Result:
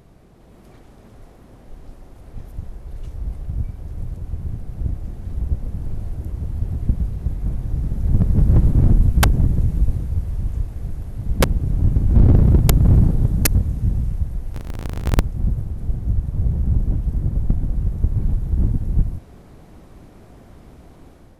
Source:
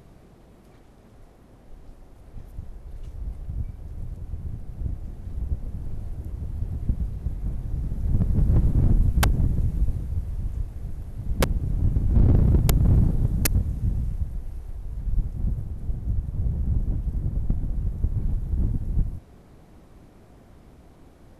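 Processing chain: 14.54–15.20 s: cycle switcher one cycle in 2, inverted; level rider gain up to 6 dB

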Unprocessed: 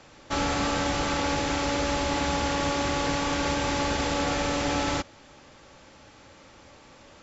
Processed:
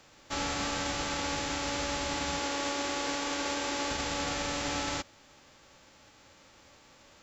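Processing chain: formants flattened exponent 0.6; 2.39–3.91 s: resonant low shelf 220 Hz -9 dB, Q 1.5; trim -6.5 dB

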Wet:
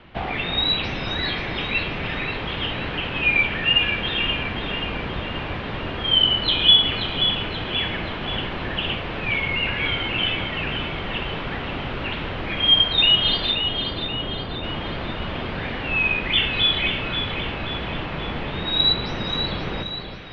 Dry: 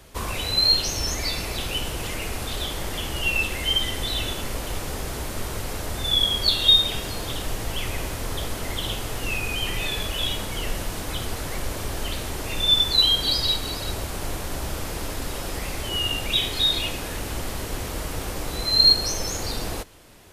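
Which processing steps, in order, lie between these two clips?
13.51–14.64 s: treble shelf 2.1 kHz -10 dB; mistuned SSB -310 Hz 180–3600 Hz; two-band feedback delay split 1.3 kHz, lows 322 ms, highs 531 ms, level -8 dB; trim +5.5 dB

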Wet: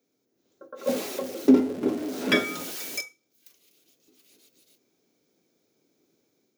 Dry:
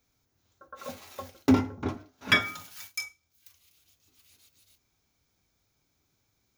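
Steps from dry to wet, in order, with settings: 0.87–3.01 s: jump at every zero crossing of -30.5 dBFS; Bessel high-pass 300 Hz, order 4; resonant low shelf 650 Hz +12 dB, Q 1.5; level rider gain up to 5.5 dB; trim -4.5 dB

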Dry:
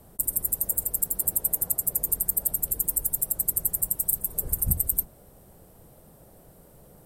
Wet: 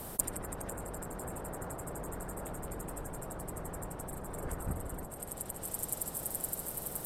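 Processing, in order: feedback echo behind a high-pass 515 ms, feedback 45%, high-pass 4.1 kHz, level -3.5 dB; low-pass that closes with the level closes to 1.4 kHz, closed at -22.5 dBFS; spectrum-flattening compressor 2:1; trim +5 dB

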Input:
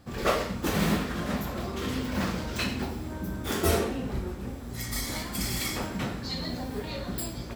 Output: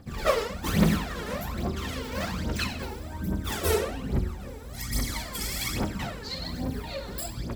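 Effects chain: de-hum 60.05 Hz, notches 28; phaser 1.2 Hz, delay 2.4 ms, feedback 68%; trim -2.5 dB

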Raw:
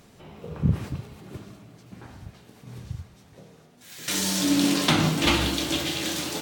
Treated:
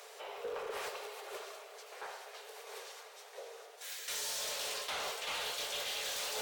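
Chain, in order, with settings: steep high-pass 410 Hz 96 dB/octave; reverse; compression 16:1, threshold -37 dBFS, peak gain reduction 20.5 dB; reverse; saturation -39.5 dBFS, distortion -11 dB; trim +5.5 dB

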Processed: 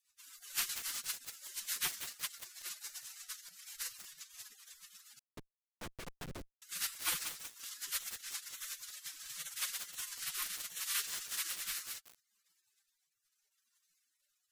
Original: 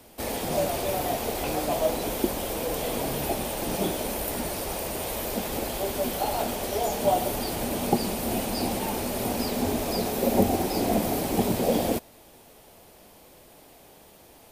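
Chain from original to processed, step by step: spectral gate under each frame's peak -30 dB weak; flange 0.9 Hz, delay 4.7 ms, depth 1.2 ms, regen +35%; 5.19–6.62 s: Schmitt trigger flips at -41.5 dBFS; rotary cabinet horn 8 Hz, later 0.7 Hz, at 9.36 s; bit-crushed delay 184 ms, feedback 80%, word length 8-bit, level -6 dB; trim +9.5 dB

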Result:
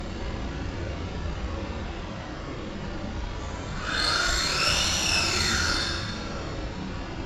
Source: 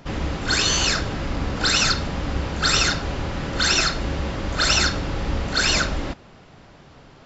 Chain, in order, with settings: Paulstretch 6.7×, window 0.05 s, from 4.01 s; Chebyshev shaper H 2 -11 dB, 6 -38 dB, 7 -44 dB, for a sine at -5 dBFS; gated-style reverb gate 370 ms falling, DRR 3 dB; trim -8 dB

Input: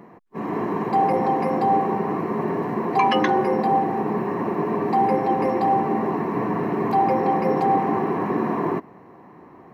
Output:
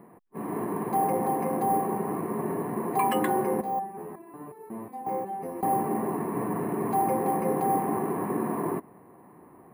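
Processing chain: treble shelf 2.7 kHz -9.5 dB; careless resampling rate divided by 4×, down filtered, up hold; 3.61–5.63 s: resonator arpeggio 5.5 Hz 65–440 Hz; trim -5.5 dB

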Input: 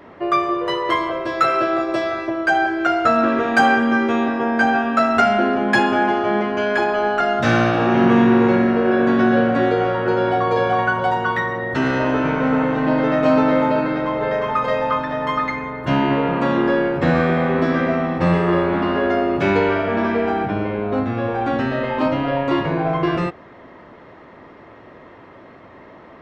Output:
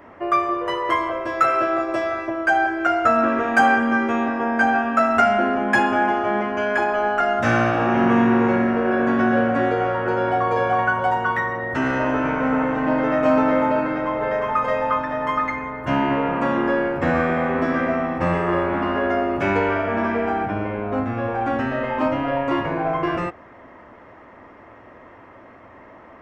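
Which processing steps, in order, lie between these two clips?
fifteen-band graphic EQ 160 Hz -8 dB, 400 Hz -5 dB, 4 kHz -12 dB

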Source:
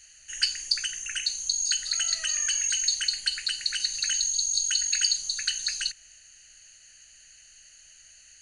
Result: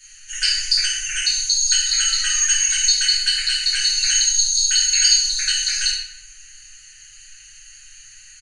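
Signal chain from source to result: elliptic band-stop 110–1200 Hz, stop band 40 dB; comb 7.3 ms; simulated room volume 310 m³, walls mixed, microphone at 2.7 m; trim +1 dB

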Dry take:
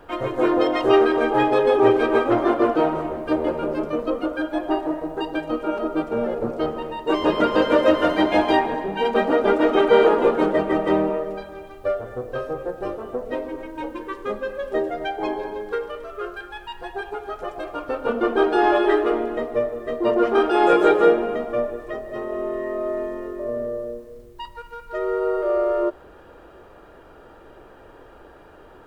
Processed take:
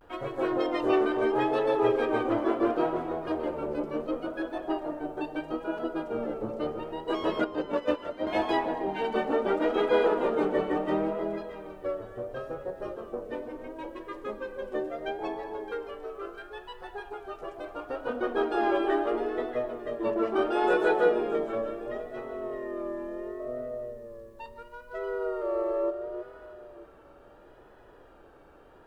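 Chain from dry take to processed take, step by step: 7.45–8.26 s: gate -14 dBFS, range -13 dB; echo whose repeats swap between lows and highs 319 ms, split 910 Hz, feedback 51%, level -6 dB; vibrato 0.73 Hz 75 cents; trim -9 dB

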